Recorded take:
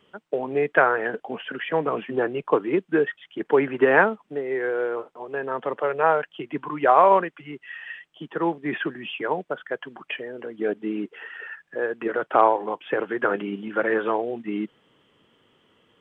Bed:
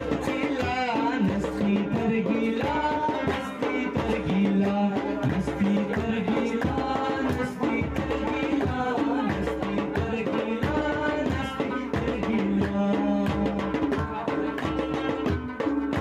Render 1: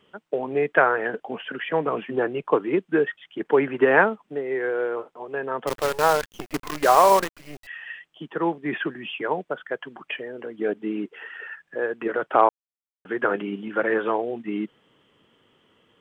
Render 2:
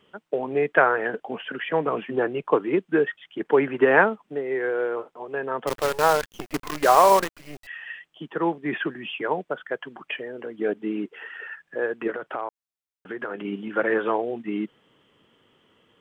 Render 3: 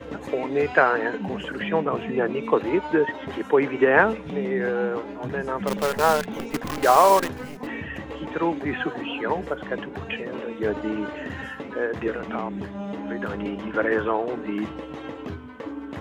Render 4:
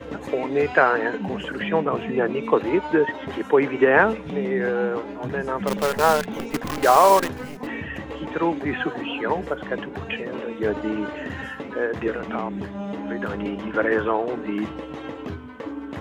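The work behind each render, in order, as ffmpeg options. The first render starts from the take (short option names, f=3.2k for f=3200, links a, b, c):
-filter_complex "[0:a]asettb=1/sr,asplit=3[a][b][c];[a]atrim=end=5.674[d];[b]atrim=start=5.67:end=7.67,asetpts=PTS-STARTPTS,afade=t=in:d=0.004:c=qsin,afade=t=out:st=1.996:d=0.004:c=qsin,acrusher=bits=5:dc=4:mix=0:aa=0.000001[e];[c]atrim=start=7.666[f];[d][e]acrossfade=d=0.004:c1=hsin:c2=qsin[g];[g][f]acrossfade=d=0.004:c1=qsin:c2=hsin,asplit=3[h][i][j];[h]atrim=end=12.49,asetpts=PTS-STARTPTS,afade=t=out:st=12.486:d=0.004:c=hsin[k];[i]atrim=start=12.49:end=13.05,asetpts=PTS-STARTPTS,volume=0[l];[j]atrim=start=13.05,asetpts=PTS-STARTPTS,afade=t=in:d=0.004:c=hsin[m];[k][l][m]concat=n=3:v=0:a=1"
-filter_complex "[0:a]asettb=1/sr,asplit=3[a][b][c];[a]atrim=end=12.104[d];[b]atrim=start=12.1:end=13.45,asetpts=PTS-STARTPTS,afade=t=in:d=0.004:c=qsin,afade=t=out:st=1.346:d=0.004:c=qsin,acompressor=threshold=-30dB:ratio=3:attack=3.2:release=140:knee=1:detection=peak[e];[c]atrim=start=13.446[f];[d][e]acrossfade=d=0.004:c1=hsin:c2=qsin[g];[g][f]acrossfade=d=0.004:c1=qsin:c2=hsin"
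-filter_complex "[1:a]volume=-8dB[a];[0:a][a]amix=inputs=2:normalize=0"
-af "volume=1.5dB,alimiter=limit=-3dB:level=0:latency=1"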